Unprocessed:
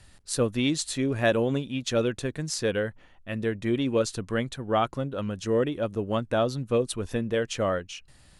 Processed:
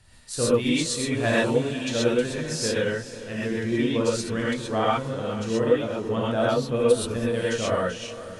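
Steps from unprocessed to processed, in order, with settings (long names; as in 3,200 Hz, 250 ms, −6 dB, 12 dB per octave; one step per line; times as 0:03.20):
feedback delay with all-pass diffusion 452 ms, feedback 54%, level −14.5 dB
reverb whose tail is shaped and stops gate 150 ms rising, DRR −7.5 dB
level −4.5 dB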